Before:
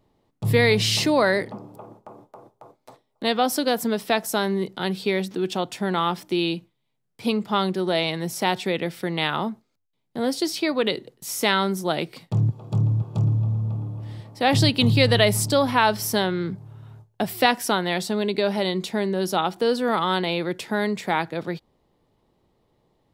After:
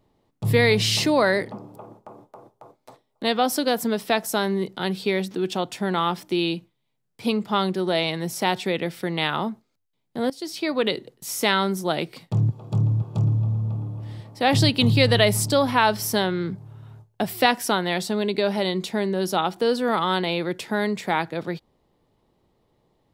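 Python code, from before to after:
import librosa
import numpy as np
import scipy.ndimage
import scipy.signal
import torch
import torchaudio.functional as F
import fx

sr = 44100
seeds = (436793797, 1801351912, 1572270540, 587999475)

y = fx.edit(x, sr, fx.fade_in_from(start_s=10.3, length_s=0.48, floor_db=-16.5), tone=tone)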